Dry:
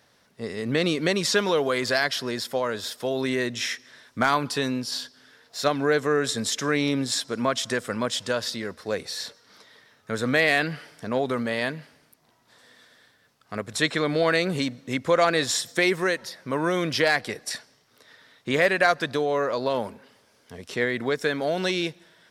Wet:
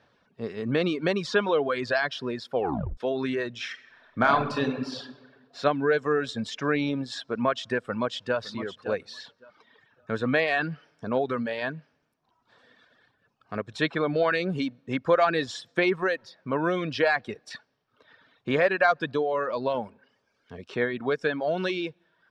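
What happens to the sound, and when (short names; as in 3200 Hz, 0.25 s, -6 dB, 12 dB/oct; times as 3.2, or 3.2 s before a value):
2.55 tape stop 0.42 s
3.7–5.02 reverb throw, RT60 1.6 s, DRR 1 dB
7.79–8.38 echo throw 0.56 s, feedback 20%, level -10 dB
whole clip: reverb removal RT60 1.1 s; LPF 2800 Hz 12 dB/oct; notch 2000 Hz, Q 8.1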